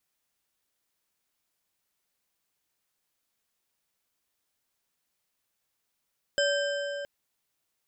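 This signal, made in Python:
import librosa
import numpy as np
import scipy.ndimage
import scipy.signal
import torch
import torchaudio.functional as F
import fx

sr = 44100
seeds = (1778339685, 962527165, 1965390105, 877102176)

y = fx.strike_metal(sr, length_s=0.67, level_db=-24, body='bar', hz=571.0, decay_s=3.9, tilt_db=3, modes=5)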